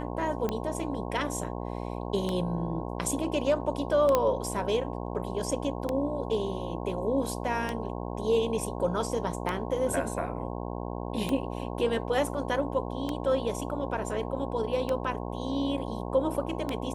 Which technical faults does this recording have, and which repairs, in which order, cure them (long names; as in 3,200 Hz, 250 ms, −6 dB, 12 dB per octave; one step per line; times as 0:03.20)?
mains buzz 60 Hz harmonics 18 −35 dBFS
scratch tick 33 1/3 rpm −16 dBFS
0:04.15: click −10 dBFS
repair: click removal
hum removal 60 Hz, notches 18